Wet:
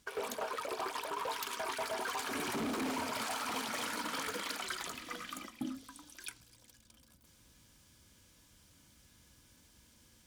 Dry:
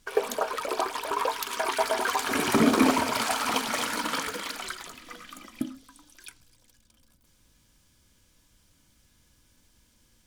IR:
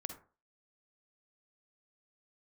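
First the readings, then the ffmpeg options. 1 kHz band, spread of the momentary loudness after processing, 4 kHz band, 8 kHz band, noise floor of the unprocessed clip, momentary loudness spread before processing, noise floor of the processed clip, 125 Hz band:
-10.0 dB, 10 LU, -8.5 dB, -8.5 dB, -65 dBFS, 16 LU, -65 dBFS, -12.5 dB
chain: -af "asoftclip=type=hard:threshold=-23.5dB,areverse,acompressor=threshold=-37dB:ratio=6,areverse,highpass=51,volume=1dB"

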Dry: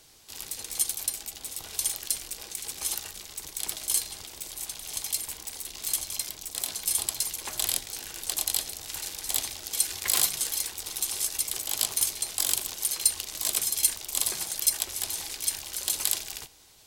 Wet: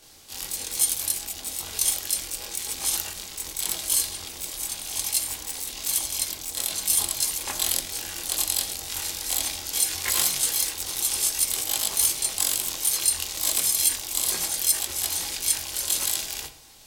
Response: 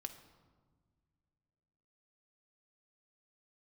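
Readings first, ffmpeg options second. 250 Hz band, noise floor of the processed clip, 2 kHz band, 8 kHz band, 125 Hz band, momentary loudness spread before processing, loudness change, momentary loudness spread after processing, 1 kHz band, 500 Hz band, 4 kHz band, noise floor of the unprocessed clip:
+5.5 dB, -40 dBFS, +4.5 dB, +4.0 dB, +5.5 dB, 11 LU, +4.0 dB, 9 LU, +5.0 dB, +4.5 dB, +4.0 dB, -47 dBFS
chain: -filter_complex "[0:a]alimiter=limit=-12dB:level=0:latency=1:release=60,asplit=2[a][b];[1:a]atrim=start_sample=2205,atrim=end_sample=6174,adelay=23[c];[b][c]afir=irnorm=-1:irlink=0,volume=7.5dB[d];[a][d]amix=inputs=2:normalize=0"

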